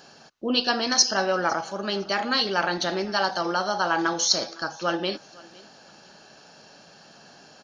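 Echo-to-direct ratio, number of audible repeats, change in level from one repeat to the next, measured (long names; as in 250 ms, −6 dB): −23.0 dB, 1, repeats not evenly spaced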